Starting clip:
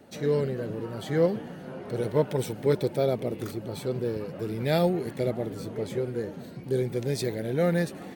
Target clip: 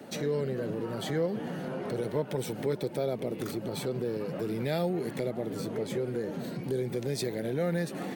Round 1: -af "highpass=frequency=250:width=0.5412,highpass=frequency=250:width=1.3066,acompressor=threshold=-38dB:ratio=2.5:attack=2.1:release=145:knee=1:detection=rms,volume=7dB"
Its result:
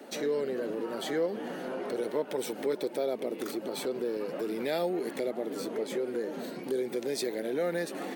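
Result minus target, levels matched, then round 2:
125 Hz band −14.5 dB
-af "highpass=frequency=120:width=0.5412,highpass=frequency=120:width=1.3066,acompressor=threshold=-38dB:ratio=2.5:attack=2.1:release=145:knee=1:detection=rms,volume=7dB"

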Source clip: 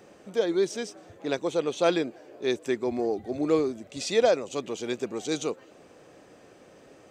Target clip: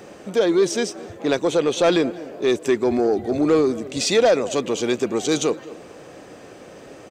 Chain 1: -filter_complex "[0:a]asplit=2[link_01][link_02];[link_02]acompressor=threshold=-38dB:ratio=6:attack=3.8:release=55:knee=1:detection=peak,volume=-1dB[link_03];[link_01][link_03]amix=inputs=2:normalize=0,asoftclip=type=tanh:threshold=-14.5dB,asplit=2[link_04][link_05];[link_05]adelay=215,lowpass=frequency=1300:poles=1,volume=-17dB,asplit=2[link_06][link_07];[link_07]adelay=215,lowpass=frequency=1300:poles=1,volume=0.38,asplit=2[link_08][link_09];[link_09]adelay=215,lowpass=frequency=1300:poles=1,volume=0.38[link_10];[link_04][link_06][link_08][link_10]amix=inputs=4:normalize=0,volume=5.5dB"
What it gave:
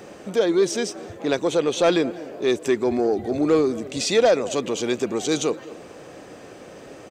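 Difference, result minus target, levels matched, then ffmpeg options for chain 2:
downward compressor: peak gain reduction +8.5 dB
-filter_complex "[0:a]asplit=2[link_01][link_02];[link_02]acompressor=threshold=-27.5dB:ratio=6:attack=3.8:release=55:knee=1:detection=peak,volume=-1dB[link_03];[link_01][link_03]amix=inputs=2:normalize=0,asoftclip=type=tanh:threshold=-14.5dB,asplit=2[link_04][link_05];[link_05]adelay=215,lowpass=frequency=1300:poles=1,volume=-17dB,asplit=2[link_06][link_07];[link_07]adelay=215,lowpass=frequency=1300:poles=1,volume=0.38,asplit=2[link_08][link_09];[link_09]adelay=215,lowpass=frequency=1300:poles=1,volume=0.38[link_10];[link_04][link_06][link_08][link_10]amix=inputs=4:normalize=0,volume=5.5dB"

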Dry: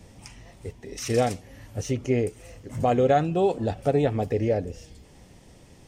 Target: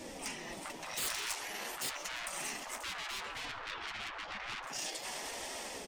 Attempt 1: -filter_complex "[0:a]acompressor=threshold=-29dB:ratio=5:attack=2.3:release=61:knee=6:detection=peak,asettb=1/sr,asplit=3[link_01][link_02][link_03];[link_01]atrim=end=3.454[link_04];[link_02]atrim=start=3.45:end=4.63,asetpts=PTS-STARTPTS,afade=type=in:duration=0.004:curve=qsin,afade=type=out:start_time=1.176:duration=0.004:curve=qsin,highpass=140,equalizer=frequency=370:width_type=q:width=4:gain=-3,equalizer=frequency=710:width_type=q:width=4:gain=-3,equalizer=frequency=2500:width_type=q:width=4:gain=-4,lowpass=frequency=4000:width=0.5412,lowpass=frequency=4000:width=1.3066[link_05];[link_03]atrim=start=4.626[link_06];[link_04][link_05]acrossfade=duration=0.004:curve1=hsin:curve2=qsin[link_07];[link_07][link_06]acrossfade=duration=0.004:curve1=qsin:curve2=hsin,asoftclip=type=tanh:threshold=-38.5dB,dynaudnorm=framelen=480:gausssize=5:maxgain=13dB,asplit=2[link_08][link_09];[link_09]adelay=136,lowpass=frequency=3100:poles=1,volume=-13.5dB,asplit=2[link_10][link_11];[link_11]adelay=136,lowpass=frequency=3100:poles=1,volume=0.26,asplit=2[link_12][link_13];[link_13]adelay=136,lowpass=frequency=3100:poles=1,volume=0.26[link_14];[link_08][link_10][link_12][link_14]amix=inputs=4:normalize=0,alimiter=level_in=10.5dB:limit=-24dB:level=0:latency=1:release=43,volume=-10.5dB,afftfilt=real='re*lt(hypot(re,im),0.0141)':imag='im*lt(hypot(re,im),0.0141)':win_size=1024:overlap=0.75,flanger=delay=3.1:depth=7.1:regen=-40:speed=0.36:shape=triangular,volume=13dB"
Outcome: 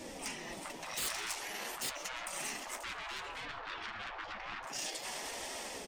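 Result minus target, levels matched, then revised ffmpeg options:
downward compressor: peak gain reduction +6 dB
-filter_complex "[0:a]acompressor=threshold=-21.5dB:ratio=5:attack=2.3:release=61:knee=6:detection=peak,asettb=1/sr,asplit=3[link_01][link_02][link_03];[link_01]atrim=end=3.454[link_04];[link_02]atrim=start=3.45:end=4.63,asetpts=PTS-STARTPTS,afade=type=in:duration=0.004:curve=qsin,afade=type=out:start_time=1.176:duration=0.004:curve=qsin,highpass=140,equalizer=frequency=370:width_type=q:width=4:gain=-3,equalizer=frequency=710:width_type=q:width=4:gain=-3,equalizer=frequency=2500:width_type=q:width=4:gain=-4,lowpass=frequency=4000:width=0.5412,lowpass=frequency=4000:width=1.3066[link_05];[link_03]atrim=start=4.626[link_06];[link_04][link_05]acrossfade=duration=0.004:curve1=hsin:curve2=qsin[link_07];[link_07][link_06]acrossfade=duration=0.004:curve1=qsin:curve2=hsin,asoftclip=type=tanh:threshold=-38.5dB,dynaudnorm=framelen=480:gausssize=5:maxgain=13dB,asplit=2[link_08][link_09];[link_09]adelay=136,lowpass=frequency=3100:poles=1,volume=-13.5dB,asplit=2[link_10][link_11];[link_11]adelay=136,lowpass=frequency=3100:poles=1,volume=0.26,asplit=2[link_12][link_13];[link_13]adelay=136,lowpass=frequency=3100:poles=1,volume=0.26[link_14];[link_08][link_10][link_12][link_14]amix=inputs=4:normalize=0,alimiter=level_in=10.5dB:limit=-24dB:level=0:latency=1:release=43,volume=-10.5dB,afftfilt=real='re*lt(hypot(re,im),0.0141)':imag='im*lt(hypot(re,im),0.0141)':win_size=1024:overlap=0.75,flanger=delay=3.1:depth=7.1:regen=-40:speed=0.36:shape=triangular,volume=13dB"

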